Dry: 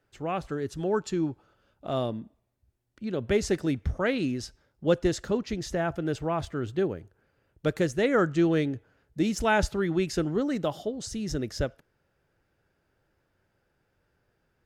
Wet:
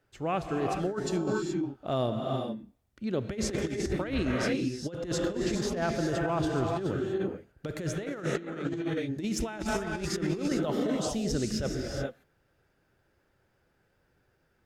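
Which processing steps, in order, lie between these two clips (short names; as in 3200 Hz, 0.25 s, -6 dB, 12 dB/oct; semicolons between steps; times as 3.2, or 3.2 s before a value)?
non-linear reverb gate 0.45 s rising, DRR 2 dB; negative-ratio compressor -27 dBFS, ratio -0.5; gain -2 dB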